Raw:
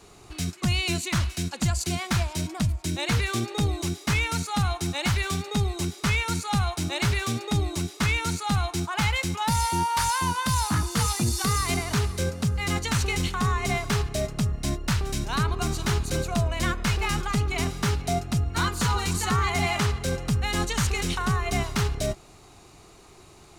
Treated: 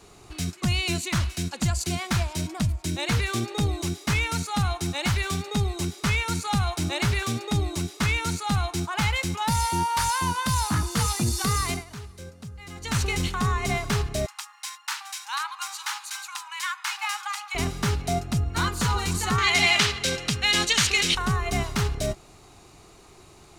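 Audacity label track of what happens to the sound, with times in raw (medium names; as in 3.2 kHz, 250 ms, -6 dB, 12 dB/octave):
6.440000	7.230000	three bands compressed up and down depth 40%
11.660000	12.960000	dip -14.5 dB, fades 0.19 s
14.260000	17.550000	brick-wall FIR high-pass 770 Hz
19.380000	21.150000	frequency weighting D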